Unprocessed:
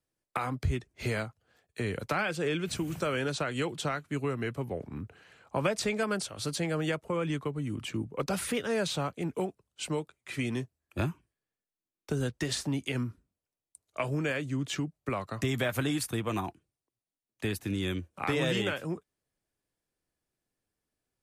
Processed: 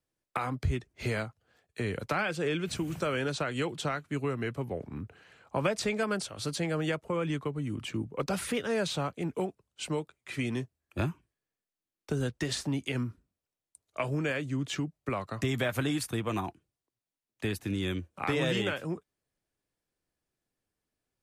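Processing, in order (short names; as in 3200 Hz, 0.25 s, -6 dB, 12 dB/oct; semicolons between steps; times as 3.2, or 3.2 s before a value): high shelf 8900 Hz -4.5 dB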